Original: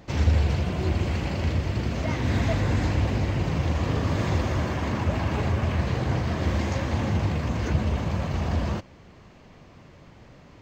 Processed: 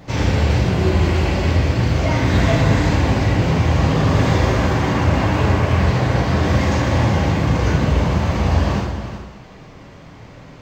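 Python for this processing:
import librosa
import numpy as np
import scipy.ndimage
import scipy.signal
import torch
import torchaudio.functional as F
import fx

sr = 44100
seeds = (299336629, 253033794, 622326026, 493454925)

y = x + 10.0 ** (-11.0 / 20.0) * np.pad(x, (int(368 * sr / 1000.0), 0))[:len(x)]
y = fx.rev_plate(y, sr, seeds[0], rt60_s=0.99, hf_ratio=0.85, predelay_ms=0, drr_db=-3.0)
y = y * 10.0 ** (5.0 / 20.0)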